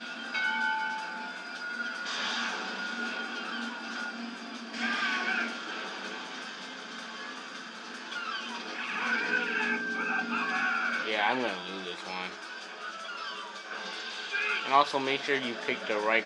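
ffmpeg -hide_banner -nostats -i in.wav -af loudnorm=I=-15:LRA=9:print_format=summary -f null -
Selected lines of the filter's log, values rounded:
Input Integrated:    -31.4 LUFS
Input True Peak:      -9.8 dBTP
Input LRA:             4.8 LU
Input Threshold:     -41.4 LUFS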